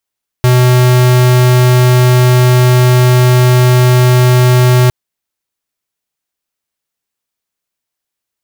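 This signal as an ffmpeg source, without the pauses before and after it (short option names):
-f lavfi -i "aevalsrc='0.447*(2*lt(mod(125*t,1),0.5)-1)':d=4.46:s=44100"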